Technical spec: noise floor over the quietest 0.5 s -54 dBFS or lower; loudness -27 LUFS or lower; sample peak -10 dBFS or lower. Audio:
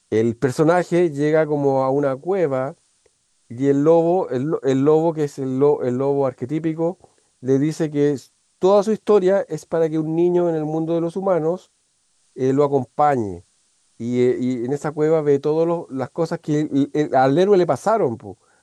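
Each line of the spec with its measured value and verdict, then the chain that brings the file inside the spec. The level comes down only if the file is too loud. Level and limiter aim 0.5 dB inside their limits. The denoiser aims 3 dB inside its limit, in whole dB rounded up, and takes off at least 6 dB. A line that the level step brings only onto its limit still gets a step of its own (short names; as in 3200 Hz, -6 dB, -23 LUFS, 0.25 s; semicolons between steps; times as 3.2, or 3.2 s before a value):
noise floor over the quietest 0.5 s -64 dBFS: OK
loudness -19.5 LUFS: fail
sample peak -5.5 dBFS: fail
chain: gain -8 dB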